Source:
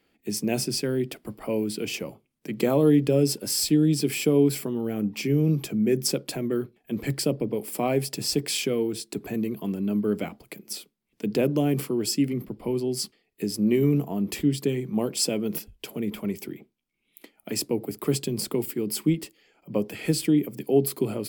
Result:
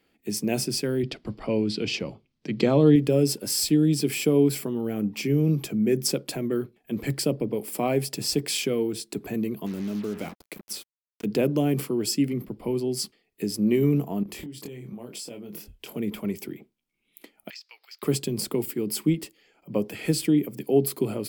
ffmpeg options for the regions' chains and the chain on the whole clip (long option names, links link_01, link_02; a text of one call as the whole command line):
ffmpeg -i in.wav -filter_complex "[0:a]asettb=1/sr,asplit=3[link_01][link_02][link_03];[link_01]atrim=end=1.034[link_04];[link_02]atrim=start=1.03:end=2.96,asetpts=PTS-STARTPTS,afade=type=in:duration=0.004:curve=qsin,afade=type=out:start_time=1.926:duration=0.004:curve=qsin,lowpass=frequency=4600:width_type=q:width=2,lowshelf=frequency=150:gain=9[link_05];[link_03]atrim=start=2.956[link_06];[link_04][link_05]acrossfade=duration=0.004:curve1=hsin:curve2=qsin[link_07];[link_07][link_06]acrossfade=duration=0.004:curve1=qsin:curve2=hsin,asettb=1/sr,asplit=3[link_08][link_09][link_10];[link_08]atrim=end=9.664[link_11];[link_09]atrim=start=9.66:end=11.25,asetpts=PTS-STARTPTS,afade=type=in:duration=0.004:curve=qsin,afade=type=out:start_time=1.586:duration=0.004:curve=qsin,acompressor=threshold=-27dB:ratio=3:attack=3.2:release=140:knee=1:detection=peak,acrusher=bits=6:mix=0:aa=0.5[link_12];[link_10]atrim=start=11.246[link_13];[link_11][link_12]acrossfade=duration=0.004:curve1=hsin:curve2=qsin[link_14];[link_14][link_13]acrossfade=duration=0.004:curve1=qsin:curve2=hsin,asettb=1/sr,asplit=3[link_15][link_16][link_17];[link_15]atrim=end=14.234[link_18];[link_16]atrim=start=14.23:end=15.96,asetpts=PTS-STARTPTS,afade=type=in:duration=0.004:curve=qsin,afade=type=out:start_time=1.726:duration=0.004:curve=qsin,acompressor=threshold=-35dB:ratio=12:attack=3.2:release=140:knee=1:detection=peak,asplit=2[link_19][link_20];[link_20]adelay=25,volume=-5.5dB[link_21];[link_19][link_21]amix=inputs=2:normalize=0,atrim=end_sample=76293[link_22];[link_17]atrim=start=15.956[link_23];[link_18][link_22]acrossfade=duration=0.004:curve1=hsin:curve2=qsin[link_24];[link_24][link_23]acrossfade=duration=0.004:curve1=qsin:curve2=hsin,asettb=1/sr,asplit=3[link_25][link_26][link_27];[link_25]atrim=end=17.504[link_28];[link_26]atrim=start=17.5:end=18.03,asetpts=PTS-STARTPTS,afade=type=in:duration=0.004:curve=qsin,afade=type=out:start_time=0.526:duration=0.004:curve=qsin,highpass=frequency=1400:width=0.5412,highpass=frequency=1400:width=1.3066,highshelf=frequency=7000:width_type=q:width=3:gain=-13.5,acompressor=threshold=-39dB:ratio=16:attack=3.2:release=140:knee=1:detection=peak[link_29];[link_27]atrim=start=18.026[link_30];[link_28][link_29]acrossfade=duration=0.004:curve1=hsin:curve2=qsin[link_31];[link_31][link_30]acrossfade=duration=0.004:curve1=qsin:curve2=hsin" out.wav